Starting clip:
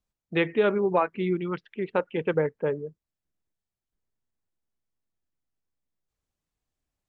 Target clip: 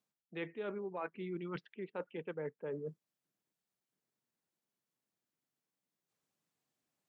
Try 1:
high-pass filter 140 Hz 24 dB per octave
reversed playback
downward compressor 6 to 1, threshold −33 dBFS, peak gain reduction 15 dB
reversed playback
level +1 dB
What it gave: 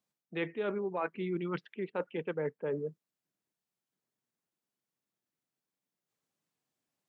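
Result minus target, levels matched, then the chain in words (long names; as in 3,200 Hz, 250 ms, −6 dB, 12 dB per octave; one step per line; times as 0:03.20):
downward compressor: peak gain reduction −6.5 dB
high-pass filter 140 Hz 24 dB per octave
reversed playback
downward compressor 6 to 1, threshold −41 dBFS, peak gain reduction 21.5 dB
reversed playback
level +1 dB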